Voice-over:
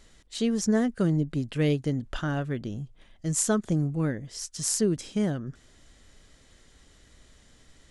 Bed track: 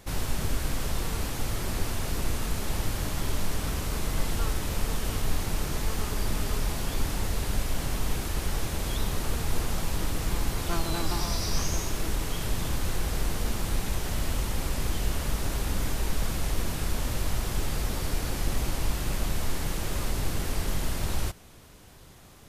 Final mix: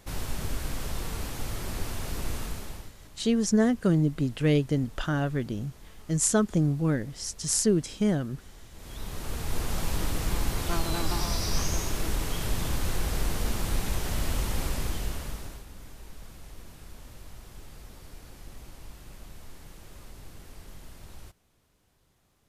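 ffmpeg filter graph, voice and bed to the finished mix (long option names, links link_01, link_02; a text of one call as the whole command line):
ffmpeg -i stem1.wav -i stem2.wav -filter_complex "[0:a]adelay=2850,volume=1.5dB[link_01];[1:a]volume=17.5dB,afade=type=out:start_time=2.39:duration=0.53:silence=0.133352,afade=type=in:start_time=8.72:duration=1.14:silence=0.0891251,afade=type=out:start_time=14.62:duration=1.03:silence=0.133352[link_02];[link_01][link_02]amix=inputs=2:normalize=0" out.wav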